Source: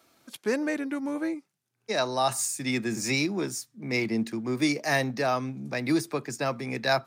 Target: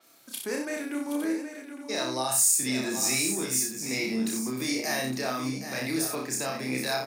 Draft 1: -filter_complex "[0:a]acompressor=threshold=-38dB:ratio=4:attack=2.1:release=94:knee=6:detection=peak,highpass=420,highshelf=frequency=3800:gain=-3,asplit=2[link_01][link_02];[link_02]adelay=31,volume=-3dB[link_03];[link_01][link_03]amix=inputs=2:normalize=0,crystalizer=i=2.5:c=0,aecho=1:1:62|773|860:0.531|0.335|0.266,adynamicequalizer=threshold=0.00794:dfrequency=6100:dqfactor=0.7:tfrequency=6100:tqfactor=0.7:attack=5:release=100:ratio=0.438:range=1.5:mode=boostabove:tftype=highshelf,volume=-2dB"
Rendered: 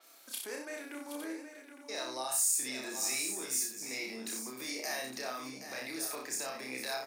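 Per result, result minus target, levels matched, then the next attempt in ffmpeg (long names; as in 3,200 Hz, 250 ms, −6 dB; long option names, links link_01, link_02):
125 Hz band −14.0 dB; downward compressor: peak gain reduction +8 dB
-filter_complex "[0:a]acompressor=threshold=-38dB:ratio=4:attack=2.1:release=94:knee=6:detection=peak,highpass=150,highshelf=frequency=3800:gain=-3,asplit=2[link_01][link_02];[link_02]adelay=31,volume=-3dB[link_03];[link_01][link_03]amix=inputs=2:normalize=0,crystalizer=i=2.5:c=0,aecho=1:1:62|773|860:0.531|0.335|0.266,adynamicequalizer=threshold=0.00794:dfrequency=6100:dqfactor=0.7:tfrequency=6100:tqfactor=0.7:attack=5:release=100:ratio=0.438:range=1.5:mode=boostabove:tftype=highshelf,volume=-2dB"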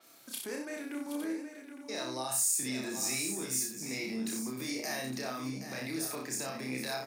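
downward compressor: peak gain reduction +8 dB
-filter_complex "[0:a]acompressor=threshold=-27.5dB:ratio=4:attack=2.1:release=94:knee=6:detection=peak,highpass=150,highshelf=frequency=3800:gain=-3,asplit=2[link_01][link_02];[link_02]adelay=31,volume=-3dB[link_03];[link_01][link_03]amix=inputs=2:normalize=0,crystalizer=i=2.5:c=0,aecho=1:1:62|773|860:0.531|0.335|0.266,adynamicequalizer=threshold=0.00794:dfrequency=6100:dqfactor=0.7:tfrequency=6100:tqfactor=0.7:attack=5:release=100:ratio=0.438:range=1.5:mode=boostabove:tftype=highshelf,volume=-2dB"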